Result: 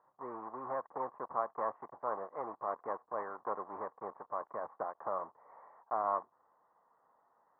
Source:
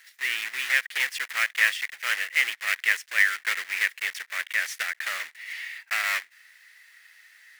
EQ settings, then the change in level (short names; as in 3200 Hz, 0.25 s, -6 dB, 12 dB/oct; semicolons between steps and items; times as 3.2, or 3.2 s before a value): Chebyshev low-pass 1100 Hz, order 6; air absorption 240 m; +11.5 dB